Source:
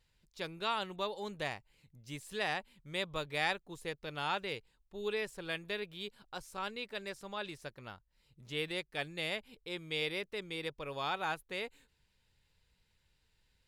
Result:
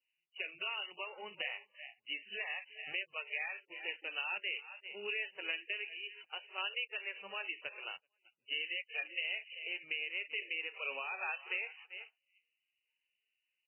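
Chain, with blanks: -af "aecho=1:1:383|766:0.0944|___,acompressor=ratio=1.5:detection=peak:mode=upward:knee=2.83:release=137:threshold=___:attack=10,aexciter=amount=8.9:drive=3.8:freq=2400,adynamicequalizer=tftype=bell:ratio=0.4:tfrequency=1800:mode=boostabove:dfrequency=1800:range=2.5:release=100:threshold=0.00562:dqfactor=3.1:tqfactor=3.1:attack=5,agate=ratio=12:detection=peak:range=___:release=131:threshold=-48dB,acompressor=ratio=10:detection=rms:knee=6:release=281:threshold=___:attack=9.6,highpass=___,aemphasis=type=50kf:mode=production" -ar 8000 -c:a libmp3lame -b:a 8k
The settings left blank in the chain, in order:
0.0255, -51dB, -23dB, -30dB, 450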